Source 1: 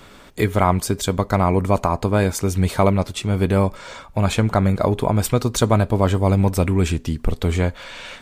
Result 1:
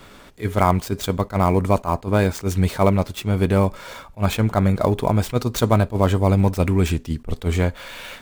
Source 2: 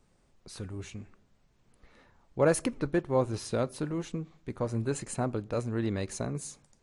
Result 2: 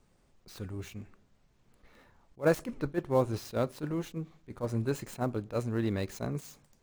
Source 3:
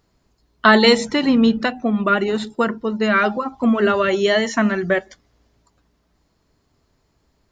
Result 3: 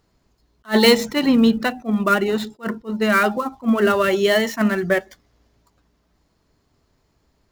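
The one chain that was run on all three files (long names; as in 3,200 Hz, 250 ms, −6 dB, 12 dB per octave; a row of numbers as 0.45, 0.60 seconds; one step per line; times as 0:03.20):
gap after every zero crossing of 0.052 ms
level that may rise only so fast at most 360 dB per second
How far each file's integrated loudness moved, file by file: −0.5, −1.5, −1.0 LU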